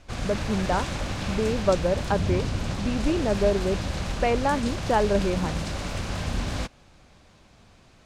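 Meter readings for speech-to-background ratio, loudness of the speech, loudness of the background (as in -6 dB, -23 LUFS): 4.0 dB, -26.5 LUFS, -30.5 LUFS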